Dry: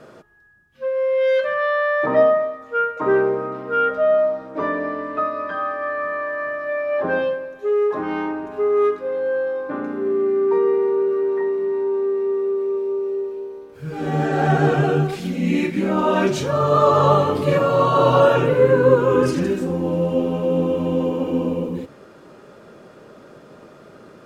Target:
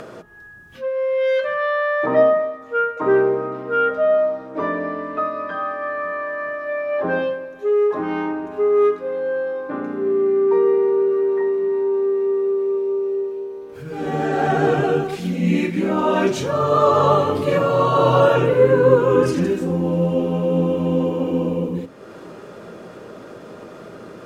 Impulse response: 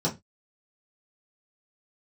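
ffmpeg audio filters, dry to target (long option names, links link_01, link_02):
-filter_complex "[0:a]acompressor=mode=upward:threshold=-30dB:ratio=2.5,asplit=2[link_01][link_02];[1:a]atrim=start_sample=2205,lowshelf=frequency=64:gain=11[link_03];[link_02][link_03]afir=irnorm=-1:irlink=0,volume=-27.5dB[link_04];[link_01][link_04]amix=inputs=2:normalize=0"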